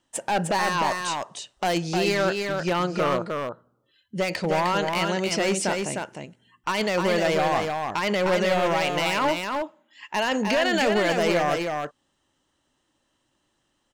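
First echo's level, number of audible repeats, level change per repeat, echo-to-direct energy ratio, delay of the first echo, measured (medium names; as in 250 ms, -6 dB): -4.5 dB, 1, no regular repeats, -4.5 dB, 306 ms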